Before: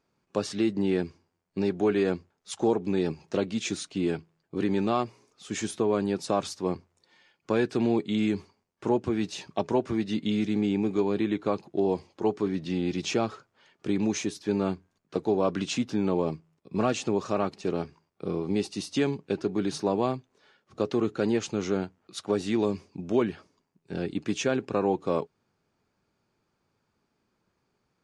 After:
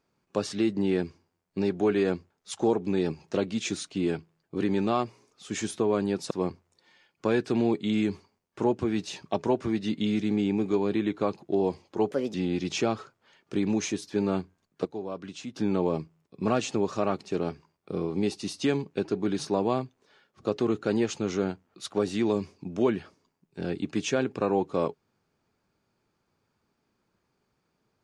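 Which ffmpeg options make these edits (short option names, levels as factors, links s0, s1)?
-filter_complex "[0:a]asplit=6[s0][s1][s2][s3][s4][s5];[s0]atrim=end=6.312[s6];[s1]atrim=start=6.558:end=12.364[s7];[s2]atrim=start=12.36:end=12.67,asetpts=PTS-STARTPTS,asetrate=59094,aresample=44100,atrim=end_sample=10202,asetpts=PTS-STARTPTS[s8];[s3]atrim=start=12.666:end=15.182[s9];[s4]atrim=start=15.178:end=15.892,asetpts=PTS-STARTPTS,volume=0.299[s10];[s5]atrim=start=15.888[s11];[s6][s7]acrossfade=d=0.004:c1=hsin:c2=hsin[s12];[s12][s8]acrossfade=d=0.004:c1=hsin:c2=hsin[s13];[s13][s9]acrossfade=d=0.004:c1=hsin:c2=hsin[s14];[s14][s10]acrossfade=d=0.004:c1=hsin:c2=hsin[s15];[s15][s11]acrossfade=d=0.004:c1=hsin:c2=hsin"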